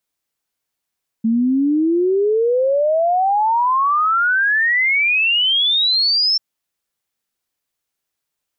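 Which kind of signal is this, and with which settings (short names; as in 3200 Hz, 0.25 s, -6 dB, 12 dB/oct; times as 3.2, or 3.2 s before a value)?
log sweep 220 Hz -> 5400 Hz 5.14 s -13 dBFS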